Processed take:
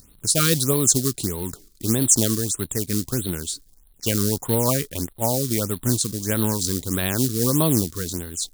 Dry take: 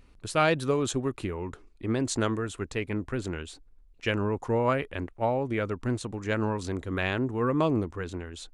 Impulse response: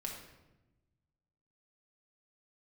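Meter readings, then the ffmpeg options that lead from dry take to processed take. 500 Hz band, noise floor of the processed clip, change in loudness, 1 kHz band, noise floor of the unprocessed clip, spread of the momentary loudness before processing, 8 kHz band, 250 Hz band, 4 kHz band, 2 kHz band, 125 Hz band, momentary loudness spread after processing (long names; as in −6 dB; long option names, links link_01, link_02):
+2.0 dB, −54 dBFS, +8.0 dB, −1.0 dB, −55 dBFS, 11 LU, +20.5 dB, +6.0 dB, +11.0 dB, −1.0 dB, +7.5 dB, 11 LU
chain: -af "equalizer=frequency=160:width=0.73:gain=9,acrusher=bits=5:mode=log:mix=0:aa=0.000001,aexciter=amount=7.5:drive=5.5:freq=3700,afftfilt=real='re*(1-between(b*sr/1024,710*pow(6400/710,0.5+0.5*sin(2*PI*1.6*pts/sr))/1.41,710*pow(6400/710,0.5+0.5*sin(2*PI*1.6*pts/sr))*1.41))':imag='im*(1-between(b*sr/1024,710*pow(6400/710,0.5+0.5*sin(2*PI*1.6*pts/sr))/1.41,710*pow(6400/710,0.5+0.5*sin(2*PI*1.6*pts/sr))*1.41))':win_size=1024:overlap=0.75"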